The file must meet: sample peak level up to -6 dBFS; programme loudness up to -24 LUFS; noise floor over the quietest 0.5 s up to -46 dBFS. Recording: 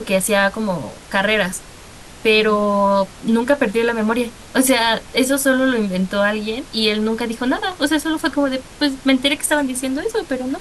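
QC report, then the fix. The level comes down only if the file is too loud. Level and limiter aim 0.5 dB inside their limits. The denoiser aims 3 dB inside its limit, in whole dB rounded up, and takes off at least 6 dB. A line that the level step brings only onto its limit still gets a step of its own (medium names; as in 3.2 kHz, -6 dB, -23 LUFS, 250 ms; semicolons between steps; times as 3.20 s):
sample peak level -4.0 dBFS: fail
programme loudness -18.0 LUFS: fail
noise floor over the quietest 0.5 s -39 dBFS: fail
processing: noise reduction 6 dB, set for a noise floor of -39 dBFS; trim -6.5 dB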